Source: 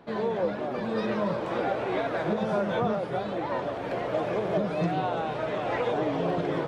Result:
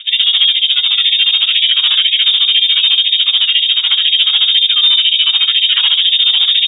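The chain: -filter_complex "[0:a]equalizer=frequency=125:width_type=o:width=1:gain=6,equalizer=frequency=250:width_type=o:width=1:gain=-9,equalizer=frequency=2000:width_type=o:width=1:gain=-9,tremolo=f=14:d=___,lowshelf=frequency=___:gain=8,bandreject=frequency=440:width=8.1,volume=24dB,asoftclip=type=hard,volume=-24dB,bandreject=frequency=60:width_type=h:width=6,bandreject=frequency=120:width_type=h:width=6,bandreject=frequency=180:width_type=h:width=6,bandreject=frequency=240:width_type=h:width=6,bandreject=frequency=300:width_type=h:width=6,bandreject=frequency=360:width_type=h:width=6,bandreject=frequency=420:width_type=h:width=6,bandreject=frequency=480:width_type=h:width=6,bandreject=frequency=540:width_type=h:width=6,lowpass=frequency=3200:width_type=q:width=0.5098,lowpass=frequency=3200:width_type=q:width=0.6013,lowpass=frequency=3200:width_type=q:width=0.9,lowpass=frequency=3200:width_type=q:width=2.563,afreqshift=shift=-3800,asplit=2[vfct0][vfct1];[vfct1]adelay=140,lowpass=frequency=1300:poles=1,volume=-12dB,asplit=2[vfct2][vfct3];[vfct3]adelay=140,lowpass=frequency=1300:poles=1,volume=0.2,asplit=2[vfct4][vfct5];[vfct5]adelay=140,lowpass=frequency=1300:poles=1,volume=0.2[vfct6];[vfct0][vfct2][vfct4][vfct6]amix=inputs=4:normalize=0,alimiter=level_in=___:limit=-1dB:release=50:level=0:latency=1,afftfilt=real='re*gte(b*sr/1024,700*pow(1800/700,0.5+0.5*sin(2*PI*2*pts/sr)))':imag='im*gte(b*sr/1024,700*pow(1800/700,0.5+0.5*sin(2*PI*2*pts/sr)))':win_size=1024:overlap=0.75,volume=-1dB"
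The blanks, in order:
0.93, 190, 28dB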